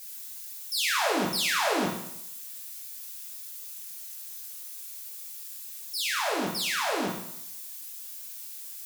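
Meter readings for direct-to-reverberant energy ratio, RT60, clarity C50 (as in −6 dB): −3.0 dB, 0.75 s, 4.5 dB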